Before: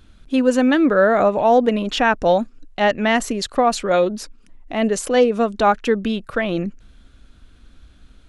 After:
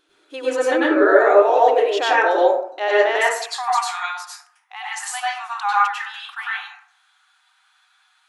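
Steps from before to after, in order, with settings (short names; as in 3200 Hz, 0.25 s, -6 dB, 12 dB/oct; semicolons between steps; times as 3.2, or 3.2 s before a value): brick-wall FIR high-pass 290 Hz, from 3.16 s 730 Hz; plate-style reverb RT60 0.62 s, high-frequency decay 0.45×, pre-delay 85 ms, DRR -7.5 dB; gain -6 dB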